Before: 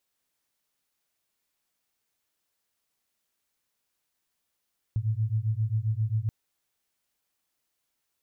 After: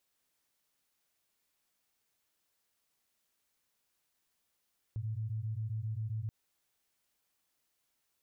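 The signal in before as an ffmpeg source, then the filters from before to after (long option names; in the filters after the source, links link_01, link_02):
-f lavfi -i "aevalsrc='0.0422*(sin(2*PI*106*t)+sin(2*PI*113.5*t))':duration=1.33:sample_rate=44100"
-af "alimiter=level_in=9dB:limit=-24dB:level=0:latency=1:release=77,volume=-9dB"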